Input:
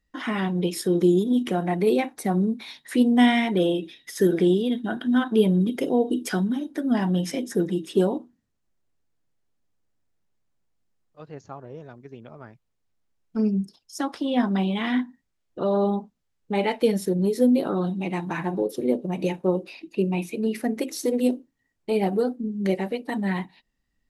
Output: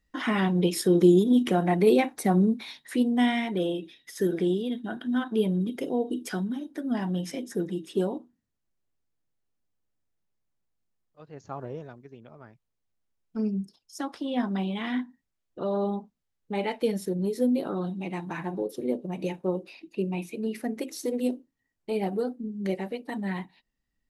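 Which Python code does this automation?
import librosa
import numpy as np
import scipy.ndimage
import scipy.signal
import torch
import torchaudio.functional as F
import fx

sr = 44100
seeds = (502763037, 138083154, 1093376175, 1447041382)

y = fx.gain(x, sr, db=fx.line((2.49, 1.0), (3.11, -6.0), (11.3, -6.0), (11.63, 5.0), (12.1, -5.5)))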